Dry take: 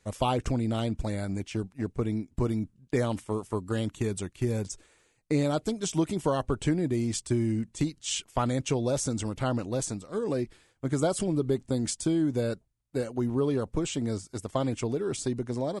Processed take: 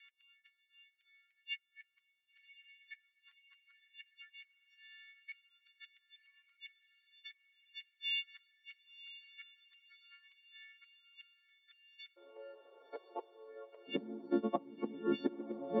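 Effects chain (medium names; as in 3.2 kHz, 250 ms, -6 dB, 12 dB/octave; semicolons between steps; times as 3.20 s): partials quantised in pitch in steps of 4 st; tilt EQ -4 dB/octave; inverted gate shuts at -15 dBFS, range -33 dB; compression 4:1, threshold -43 dBFS, peak gain reduction 18.5 dB; steep low-pass 3.4 kHz 48 dB/octave; echo that smears into a reverb 1065 ms, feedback 51%, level -14.5 dB; flange 0.18 Hz, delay 7.1 ms, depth 1.5 ms, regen -37%; steep high-pass 1.9 kHz 48 dB/octave, from 12.16 s 450 Hz, from 13.87 s 200 Hz; trim +16 dB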